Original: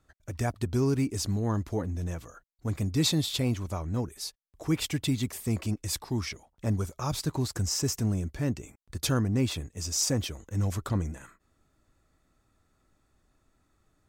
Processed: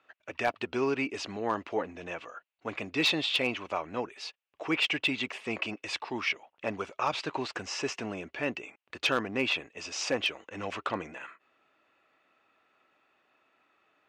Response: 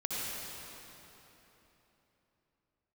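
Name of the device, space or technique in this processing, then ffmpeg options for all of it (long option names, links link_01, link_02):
megaphone: -af "highpass=520,lowpass=2700,lowpass=8900,equalizer=frequency=2700:width_type=o:width=0.49:gain=12,asoftclip=type=hard:threshold=-24.5dB,volume=6.5dB"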